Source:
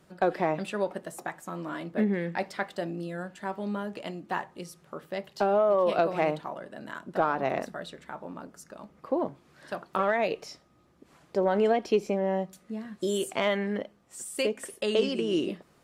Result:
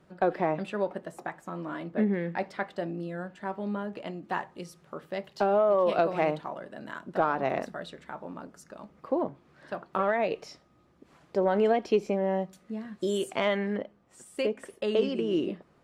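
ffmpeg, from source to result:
-af "asetnsamples=n=441:p=0,asendcmd='4.23 lowpass f 5600;9.22 lowpass f 2300;10.32 lowpass f 4800;13.76 lowpass f 1900',lowpass=f=2.4k:p=1"

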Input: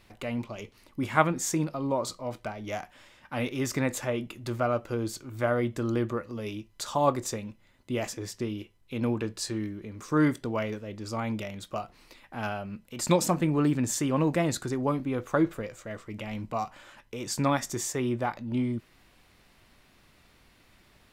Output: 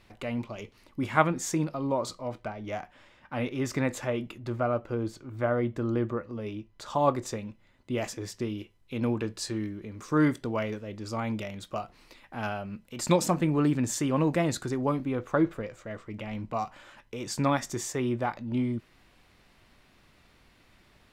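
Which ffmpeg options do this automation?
-af "asetnsamples=n=441:p=0,asendcmd='2.28 lowpass f 2500;3.66 lowpass f 4400;4.38 lowpass f 1700;6.9 lowpass f 4100;7.98 lowpass f 8600;15.12 lowpass f 3300;16.53 lowpass f 6500',lowpass=f=6.2k:p=1"

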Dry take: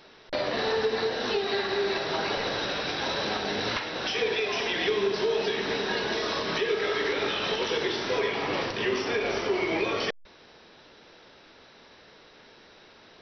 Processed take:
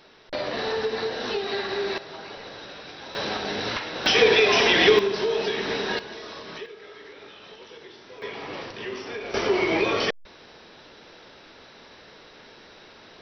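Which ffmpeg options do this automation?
-af "asetnsamples=n=441:p=0,asendcmd='1.98 volume volume -10.5dB;3.15 volume volume 0.5dB;4.06 volume volume 10dB;4.99 volume volume 1.5dB;5.99 volume volume -9.5dB;6.66 volume volume -17dB;8.22 volume volume -6.5dB;9.34 volume volume 4.5dB',volume=-0.5dB"

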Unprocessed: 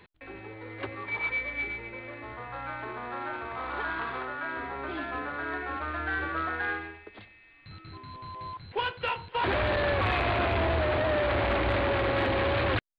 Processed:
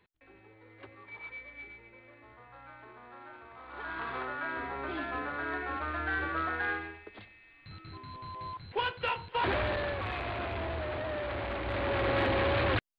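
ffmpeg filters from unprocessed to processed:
-af "volume=6dB,afade=t=in:st=3.67:d=0.54:silence=0.237137,afade=t=out:st=9.39:d=0.59:silence=0.421697,afade=t=in:st=11.63:d=0.5:silence=0.421697"

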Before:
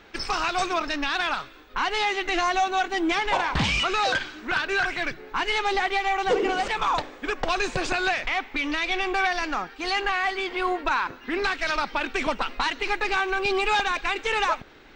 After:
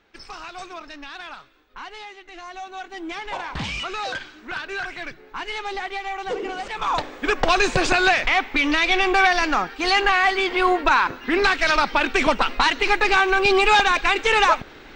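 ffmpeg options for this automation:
-af "volume=14dB,afade=t=out:st=1.8:d=0.45:silence=0.446684,afade=t=in:st=2.25:d=1.38:silence=0.223872,afade=t=in:st=6.7:d=0.61:silence=0.251189"

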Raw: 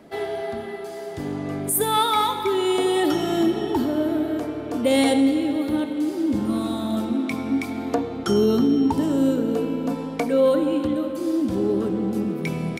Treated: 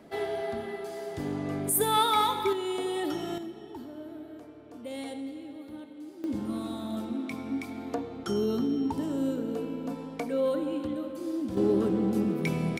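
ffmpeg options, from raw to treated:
-af "asetnsamples=n=441:p=0,asendcmd='2.53 volume volume -10.5dB;3.38 volume volume -19.5dB;6.24 volume volume -9.5dB;11.57 volume volume -2.5dB',volume=-4dB"

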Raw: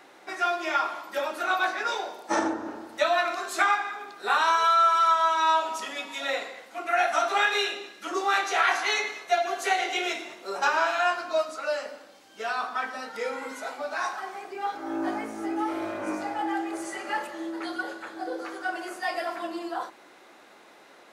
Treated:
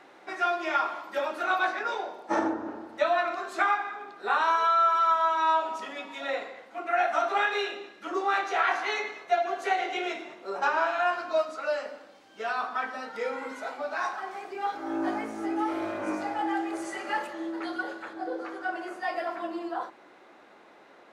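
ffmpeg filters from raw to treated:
-af "asetnsamples=n=441:p=0,asendcmd='1.79 lowpass f 1600;11.13 lowpass f 2900;14.31 lowpass f 5900;17.33 lowpass f 3300;18.13 lowpass f 1900',lowpass=f=3k:p=1"

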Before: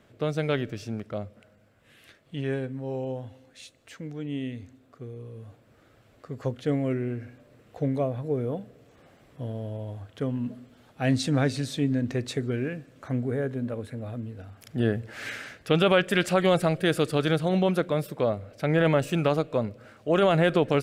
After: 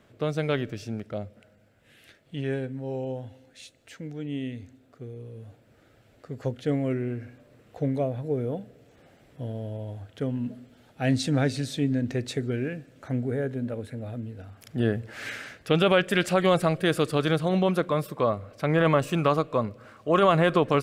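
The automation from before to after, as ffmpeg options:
-af "asetnsamples=n=441:p=0,asendcmd='0.74 equalizer g -9;6.71 equalizer g -2;7.9 equalizer g -8.5;14.41 equalizer g 0;16.44 equalizer g 6;17.84 equalizer g 12.5',equalizer=f=1.1k:t=o:w=0.23:g=1.5"

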